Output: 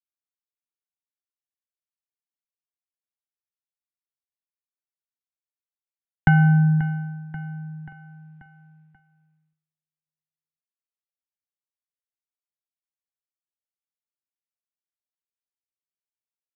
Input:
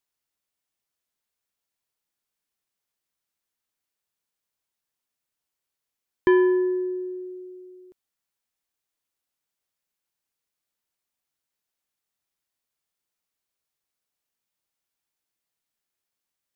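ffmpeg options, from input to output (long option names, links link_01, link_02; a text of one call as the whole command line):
ffmpeg -i in.wav -af "crystalizer=i=4:c=0,acompressor=threshold=-19dB:ratio=12,highpass=frequency=200:width_type=q:width=0.5412,highpass=frequency=200:width_type=q:width=1.307,lowpass=frequency=2700:width_type=q:width=0.5176,lowpass=frequency=2700:width_type=q:width=0.7071,lowpass=frequency=2700:width_type=q:width=1.932,afreqshift=-210,aecho=1:1:535|1070|1605|2140|2675:0.178|0.0978|0.0538|0.0296|0.0163,agate=range=-33dB:threshold=-54dB:ratio=3:detection=peak,volume=6.5dB" out.wav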